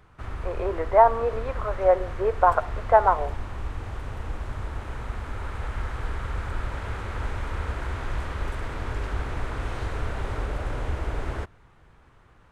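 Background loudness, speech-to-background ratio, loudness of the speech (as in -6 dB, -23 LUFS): -34.0 LUFS, 11.5 dB, -22.5 LUFS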